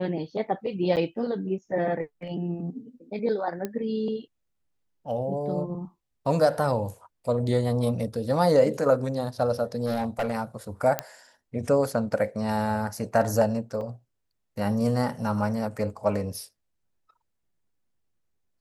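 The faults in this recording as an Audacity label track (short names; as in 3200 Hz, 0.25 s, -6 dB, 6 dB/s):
0.960000	0.970000	gap 8.4 ms
3.650000	3.650000	pop -17 dBFS
9.850000	10.350000	clipped -22.5 dBFS
10.990000	10.990000	pop -10 dBFS
13.810000	13.810000	gap 3.2 ms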